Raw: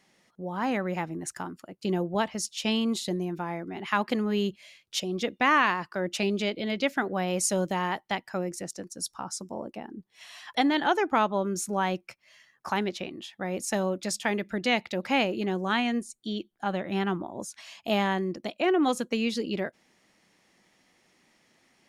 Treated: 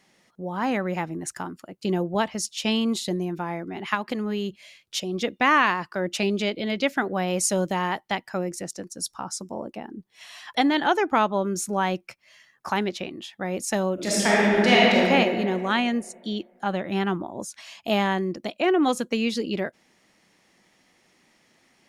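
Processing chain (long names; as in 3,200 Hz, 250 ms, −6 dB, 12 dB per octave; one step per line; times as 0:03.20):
0:03.94–0:05.14: downward compressor, threshold −27 dBFS, peak gain reduction 6.5 dB
0:13.94–0:15.02: thrown reverb, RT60 2.3 s, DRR −7 dB
level +3 dB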